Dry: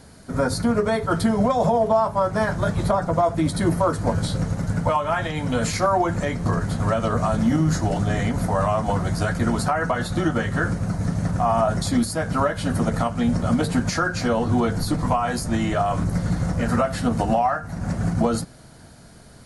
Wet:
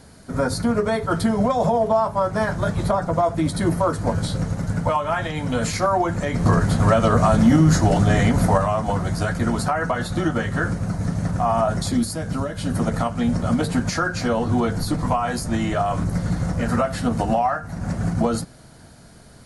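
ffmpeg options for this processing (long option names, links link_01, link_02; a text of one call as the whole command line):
ffmpeg -i in.wav -filter_complex "[0:a]asettb=1/sr,asplit=3[link_01][link_02][link_03];[link_01]atrim=end=6.344[link_04];[link_02]atrim=start=6.34:end=8.58,asetpts=PTS-STARTPTS,afade=type=in:duration=0.004:curve=qsin,afade=type=out:start_time=2.236:duration=0.004:curve=qsin,acontrast=42[link_05];[link_03]atrim=start=8.576[link_06];[link_04][link_05]acrossfade=duration=0.004:curve1=hsin:curve2=qsin[link_07];[link_07][link_06]acrossfade=duration=0.004:curve1=qsin:curve2=hsin,asettb=1/sr,asplit=3[link_08][link_09][link_10];[link_08]atrim=end=11.924[link_11];[link_09]atrim=start=11.92:end=12.75,asetpts=PTS-STARTPTS,afade=type=in:duration=0.004:curve=qsin,afade=type=out:start_time=0.826:duration=0.004:curve=qsin,acrossover=split=450|3000[link_12][link_13][link_14];[link_13]acompressor=threshold=-40dB:ratio=2:attack=3.2:release=140:knee=2.83:detection=peak[link_15];[link_12][link_15][link_14]amix=inputs=3:normalize=0[link_16];[link_10]atrim=start=12.746[link_17];[link_11][link_16]acrossfade=duration=0.004:curve1=hsin:curve2=qsin[link_18];[link_18][link_17]acrossfade=duration=0.004:curve1=qsin:curve2=hsin" out.wav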